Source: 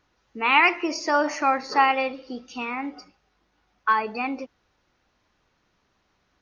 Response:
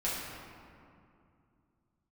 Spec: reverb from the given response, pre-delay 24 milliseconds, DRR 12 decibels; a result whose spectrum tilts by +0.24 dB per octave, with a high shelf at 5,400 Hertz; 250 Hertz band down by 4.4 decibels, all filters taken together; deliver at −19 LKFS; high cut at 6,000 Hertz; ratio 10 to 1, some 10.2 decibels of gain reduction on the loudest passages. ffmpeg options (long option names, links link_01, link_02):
-filter_complex "[0:a]lowpass=6000,equalizer=frequency=250:width_type=o:gain=-5.5,highshelf=frequency=5400:gain=-5.5,acompressor=threshold=-24dB:ratio=10,asplit=2[link_01][link_02];[1:a]atrim=start_sample=2205,adelay=24[link_03];[link_02][link_03]afir=irnorm=-1:irlink=0,volume=-19dB[link_04];[link_01][link_04]amix=inputs=2:normalize=0,volume=11.5dB"